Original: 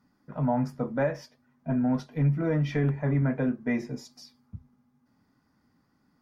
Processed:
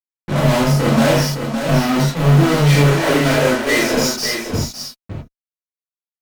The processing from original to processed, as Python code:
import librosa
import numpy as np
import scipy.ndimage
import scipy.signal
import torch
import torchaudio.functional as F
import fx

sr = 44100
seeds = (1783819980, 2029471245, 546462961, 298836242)

y = fx.env_flanger(x, sr, rest_ms=3.3, full_db=-21.5, at=(1.14, 2.26), fade=0.02)
y = fx.bessel_highpass(y, sr, hz=540.0, order=8, at=(2.85, 3.94))
y = fx.fuzz(y, sr, gain_db=51.0, gate_db=-52.0)
y = y + 10.0 ** (-7.0 / 20.0) * np.pad(y, (int(562 * sr / 1000.0), 0))[:len(y)]
y = fx.rev_gated(y, sr, seeds[0], gate_ms=110, shape='flat', drr_db=-5.5)
y = F.gain(torch.from_numpy(y), -7.5).numpy()